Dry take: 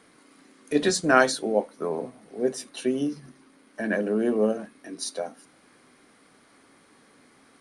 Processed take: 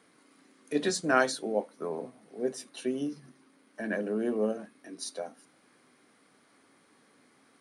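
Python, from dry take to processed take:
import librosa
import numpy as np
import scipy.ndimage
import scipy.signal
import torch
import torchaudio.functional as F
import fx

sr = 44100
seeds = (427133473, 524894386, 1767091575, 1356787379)

y = scipy.signal.sosfilt(scipy.signal.butter(2, 100.0, 'highpass', fs=sr, output='sos'), x)
y = y * 10.0 ** (-6.0 / 20.0)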